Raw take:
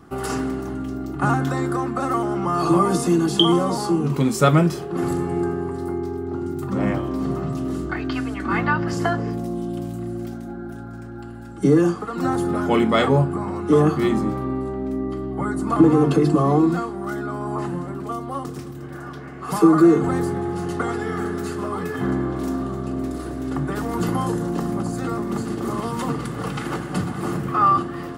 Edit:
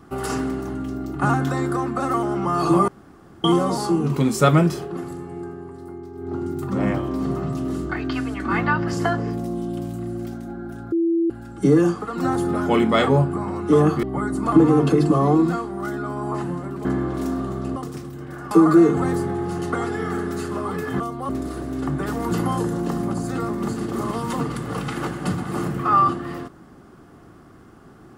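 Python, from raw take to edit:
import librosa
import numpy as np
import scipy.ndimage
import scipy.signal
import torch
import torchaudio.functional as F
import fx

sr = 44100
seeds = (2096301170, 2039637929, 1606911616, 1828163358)

y = fx.edit(x, sr, fx.room_tone_fill(start_s=2.88, length_s=0.56),
    fx.fade_down_up(start_s=4.85, length_s=1.48, db=-10.0, fade_s=0.19),
    fx.bleep(start_s=10.92, length_s=0.38, hz=334.0, db=-16.5),
    fx.cut(start_s=14.03, length_s=1.24),
    fx.swap(start_s=18.09, length_s=0.29, other_s=22.07, other_length_s=0.91),
    fx.cut(start_s=19.13, length_s=0.45), tone=tone)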